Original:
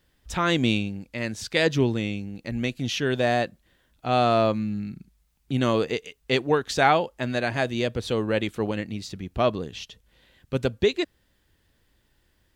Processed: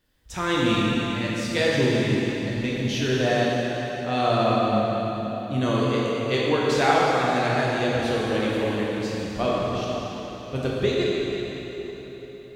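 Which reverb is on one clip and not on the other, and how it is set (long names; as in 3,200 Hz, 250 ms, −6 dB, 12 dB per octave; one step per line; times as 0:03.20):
dense smooth reverb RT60 4.3 s, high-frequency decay 0.85×, DRR −6 dB
level −5 dB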